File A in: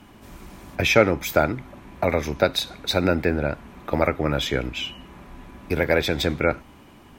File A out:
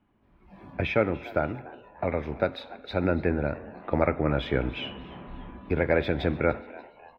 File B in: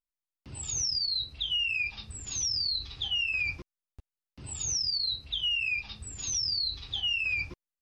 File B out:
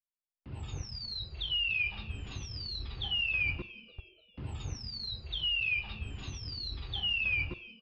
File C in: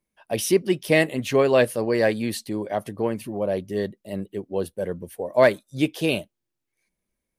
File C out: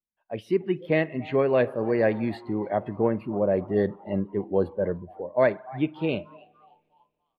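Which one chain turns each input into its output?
spring reverb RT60 1.8 s, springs 45 ms, chirp 75 ms, DRR 18 dB
automatic gain control gain up to 11.5 dB
echo with shifted repeats 293 ms, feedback 47%, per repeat +140 Hz, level −20 dB
noise reduction from a noise print of the clip's start 13 dB
high-frequency loss of the air 430 metres
level −6.5 dB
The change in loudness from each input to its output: −5.5, −4.5, −2.5 LU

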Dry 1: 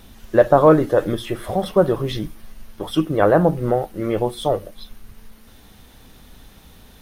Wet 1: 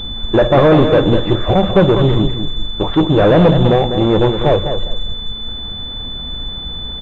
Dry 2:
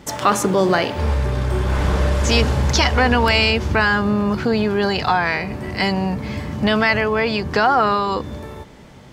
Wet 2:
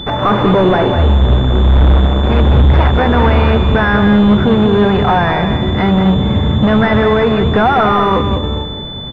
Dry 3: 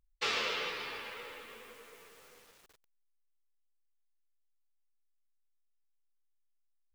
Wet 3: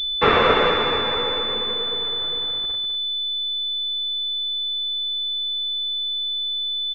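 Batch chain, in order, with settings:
low-shelf EQ 140 Hz +7 dB
soft clipping −19 dBFS
repeating echo 200 ms, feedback 22%, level −8 dB
switching amplifier with a slow clock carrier 3,500 Hz
normalise the peak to −3 dBFS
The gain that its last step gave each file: +12.0, +11.5, +21.5 decibels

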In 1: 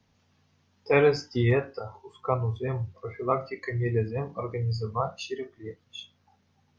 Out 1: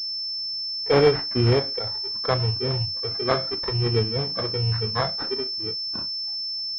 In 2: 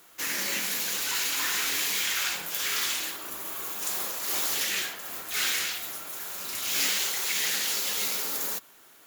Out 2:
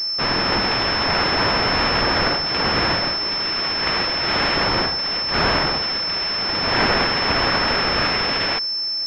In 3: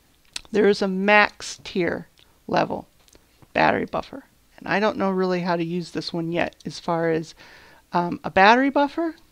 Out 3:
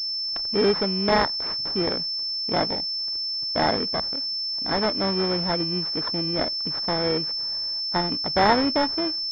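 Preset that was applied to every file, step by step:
samples in bit-reversed order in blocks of 16 samples
switching amplifier with a slow clock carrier 5,300 Hz
normalise the peak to −6 dBFS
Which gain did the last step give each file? +4.0, +11.5, −3.0 decibels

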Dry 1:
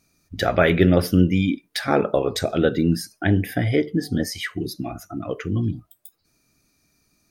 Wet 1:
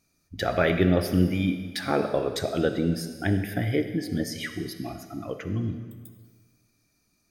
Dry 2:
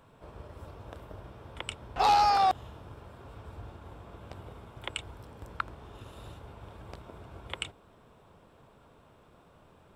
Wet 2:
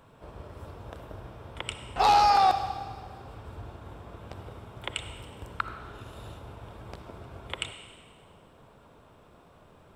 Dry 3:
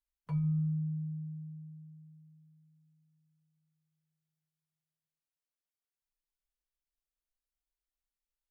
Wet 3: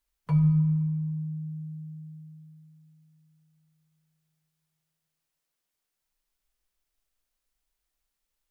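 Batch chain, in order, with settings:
comb and all-pass reverb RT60 1.6 s, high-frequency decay 1×, pre-delay 20 ms, DRR 8.5 dB
loudness normalisation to −27 LKFS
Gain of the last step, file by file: −5.5, +2.5, +10.0 decibels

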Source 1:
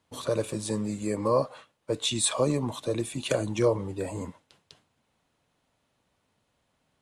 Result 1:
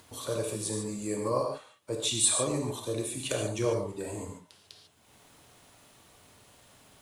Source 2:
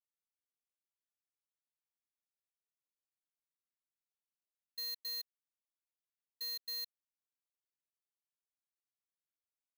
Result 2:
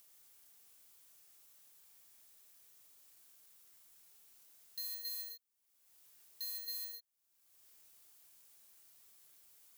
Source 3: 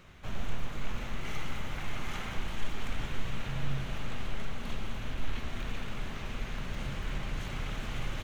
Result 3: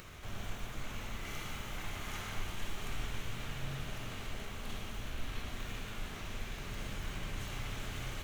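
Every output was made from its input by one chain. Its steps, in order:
high-shelf EQ 6,100 Hz +11.5 dB
upward compression, threshold −37 dBFS
reverb whose tail is shaped and stops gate 170 ms flat, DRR 1 dB
level −6.5 dB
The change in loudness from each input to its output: −2.0, −1.0, −3.5 LU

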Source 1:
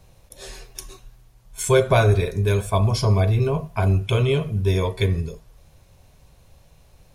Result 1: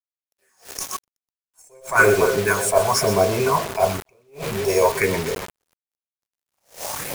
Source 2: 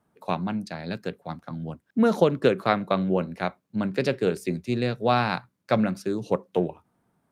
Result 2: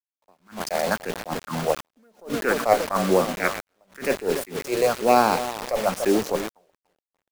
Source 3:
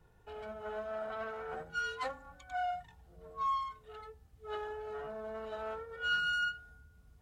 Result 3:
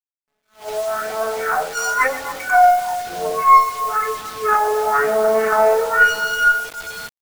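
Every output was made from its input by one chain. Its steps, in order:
stylus tracing distortion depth 0.029 ms
camcorder AGC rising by 10 dB per second
all-pass phaser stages 4, 1 Hz, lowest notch 220–1,900 Hz
high-pass filter 61 Hz 12 dB per octave
in parallel at −1 dB: downward compressor 8 to 1, threshold −28 dBFS
on the sum: meter weighting curve A
tube saturation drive 8 dB, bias 0.6
Butterworth band-reject 3,400 Hz, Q 1.2
parametric band 110 Hz −7 dB 1.3 octaves
echo with a time of its own for lows and highs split 1,400 Hz, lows 290 ms, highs 125 ms, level −13 dB
bit reduction 7 bits
level that may rise only so fast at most 200 dB per second
normalise the peak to −2 dBFS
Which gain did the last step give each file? +14.0, +12.5, +10.0 decibels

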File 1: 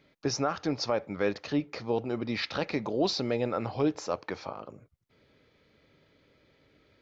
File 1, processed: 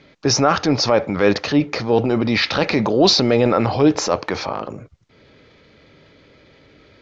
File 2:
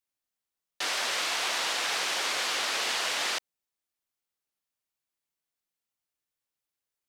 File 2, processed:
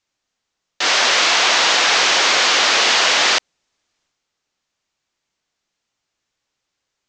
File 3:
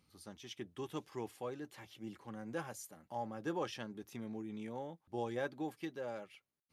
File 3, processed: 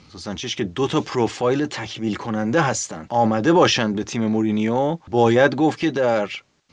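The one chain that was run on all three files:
Butterworth low-pass 7,200 Hz 48 dB per octave
transient designer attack −4 dB, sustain +5 dB
normalise the peak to −2 dBFS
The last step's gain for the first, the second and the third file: +14.0, +15.0, +24.0 decibels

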